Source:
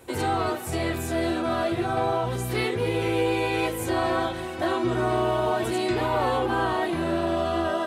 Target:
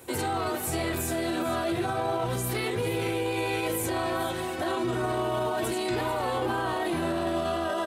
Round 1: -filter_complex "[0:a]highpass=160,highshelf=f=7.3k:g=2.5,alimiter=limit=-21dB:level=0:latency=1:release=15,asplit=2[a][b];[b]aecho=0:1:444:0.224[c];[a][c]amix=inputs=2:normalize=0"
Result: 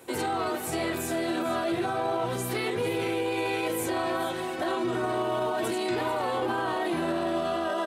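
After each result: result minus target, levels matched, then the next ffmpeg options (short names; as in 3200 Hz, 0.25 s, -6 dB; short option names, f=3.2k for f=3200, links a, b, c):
125 Hz band -5.0 dB; 8000 Hz band -2.5 dB
-filter_complex "[0:a]highpass=65,highshelf=f=7.3k:g=2.5,alimiter=limit=-21dB:level=0:latency=1:release=15,asplit=2[a][b];[b]aecho=0:1:444:0.224[c];[a][c]amix=inputs=2:normalize=0"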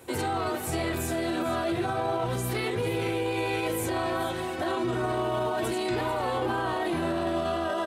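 8000 Hz band -3.0 dB
-filter_complex "[0:a]highpass=65,highshelf=f=7.3k:g=9,alimiter=limit=-21dB:level=0:latency=1:release=15,asplit=2[a][b];[b]aecho=0:1:444:0.224[c];[a][c]amix=inputs=2:normalize=0"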